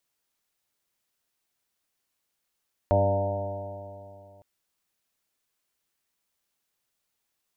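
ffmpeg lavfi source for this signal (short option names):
-f lavfi -i "aevalsrc='0.075*pow(10,-3*t/2.68)*sin(2*PI*96.76*t)+0.0237*pow(10,-3*t/2.68)*sin(2*PI*193.9*t)+0.0251*pow(10,-3*t/2.68)*sin(2*PI*291.79*t)+0.0188*pow(10,-3*t/2.68)*sin(2*PI*390.8*t)+0.0237*pow(10,-3*t/2.68)*sin(2*PI*491.29*t)+0.1*pow(10,-3*t/2.68)*sin(2*PI*593.62*t)+0.0473*pow(10,-3*t/2.68)*sin(2*PI*698.13*t)+0.0168*pow(10,-3*t/2.68)*sin(2*PI*805.14*t)+0.0282*pow(10,-3*t/2.68)*sin(2*PI*914.97*t)':d=1.51:s=44100"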